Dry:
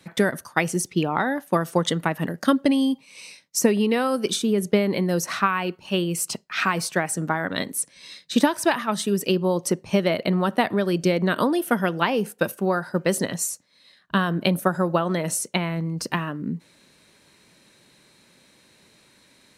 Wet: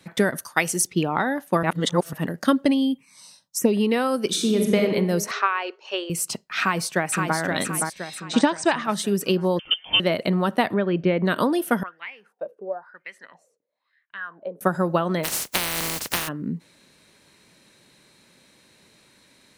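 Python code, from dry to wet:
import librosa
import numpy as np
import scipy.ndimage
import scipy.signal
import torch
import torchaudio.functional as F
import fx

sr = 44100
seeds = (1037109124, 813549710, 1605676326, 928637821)

y = fx.tilt_eq(x, sr, slope=2.0, at=(0.38, 0.87))
y = fx.env_phaser(y, sr, low_hz=350.0, high_hz=1800.0, full_db=-15.0, at=(2.73, 3.72), fade=0.02)
y = fx.reverb_throw(y, sr, start_s=4.27, length_s=0.52, rt60_s=1.3, drr_db=1.0)
y = fx.ellip_bandpass(y, sr, low_hz=420.0, high_hz=6300.0, order=3, stop_db=40, at=(5.31, 6.1))
y = fx.echo_throw(y, sr, start_s=6.6, length_s=0.77, ms=520, feedback_pct=45, wet_db=-4.0)
y = fx.brickwall_lowpass(y, sr, high_hz=9000.0, at=(8.2, 8.85))
y = fx.freq_invert(y, sr, carrier_hz=3300, at=(9.59, 10.0))
y = fx.lowpass(y, sr, hz=2900.0, slope=24, at=(10.74, 11.25))
y = fx.wah_lfo(y, sr, hz=1.0, low_hz=440.0, high_hz=2200.0, q=7.8, at=(11.83, 14.61))
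y = fx.spec_flatten(y, sr, power=0.2, at=(15.23, 16.27), fade=0.02)
y = fx.edit(y, sr, fx.reverse_span(start_s=1.63, length_s=0.5), tone=tone)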